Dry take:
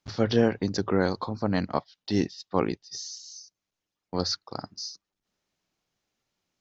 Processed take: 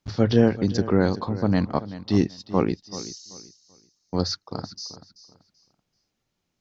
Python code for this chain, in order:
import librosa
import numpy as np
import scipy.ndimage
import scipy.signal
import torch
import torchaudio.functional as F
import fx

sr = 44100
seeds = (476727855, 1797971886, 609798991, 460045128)

p1 = fx.low_shelf(x, sr, hz=330.0, db=8.0)
y = p1 + fx.echo_feedback(p1, sr, ms=384, feedback_pct=26, wet_db=-15, dry=0)